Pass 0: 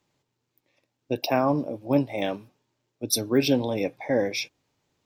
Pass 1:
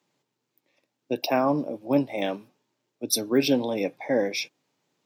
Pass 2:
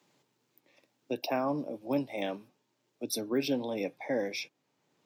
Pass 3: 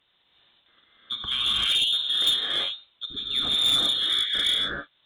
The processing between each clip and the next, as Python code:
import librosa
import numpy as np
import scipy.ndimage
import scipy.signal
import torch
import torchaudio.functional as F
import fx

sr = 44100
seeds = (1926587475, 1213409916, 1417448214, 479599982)

y1 = scipy.signal.sosfilt(scipy.signal.butter(4, 150.0, 'highpass', fs=sr, output='sos'), x)
y2 = fx.band_squash(y1, sr, depth_pct=40)
y2 = F.gain(torch.from_numpy(y2), -7.5).numpy()
y3 = fx.freq_invert(y2, sr, carrier_hz=3900)
y3 = fx.rev_gated(y3, sr, seeds[0], gate_ms=410, shape='rising', drr_db=-7.5)
y3 = fx.cheby_harmonics(y3, sr, harmonics=(3, 5, 6, 8), levels_db=(-15, -16, -23, -26), full_scale_db=-9.5)